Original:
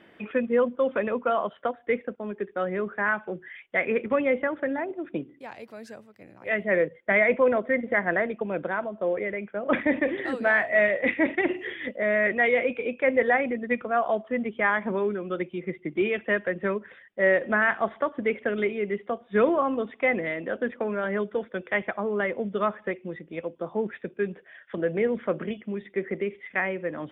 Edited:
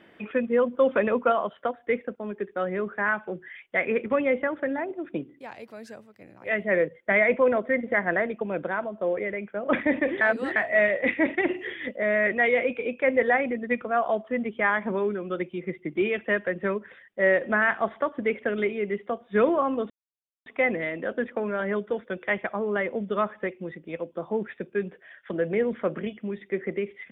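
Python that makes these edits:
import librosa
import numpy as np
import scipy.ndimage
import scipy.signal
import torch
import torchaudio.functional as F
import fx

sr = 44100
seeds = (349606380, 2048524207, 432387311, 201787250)

y = fx.edit(x, sr, fx.clip_gain(start_s=0.73, length_s=0.59, db=3.5),
    fx.reverse_span(start_s=10.21, length_s=0.35),
    fx.insert_silence(at_s=19.9, length_s=0.56), tone=tone)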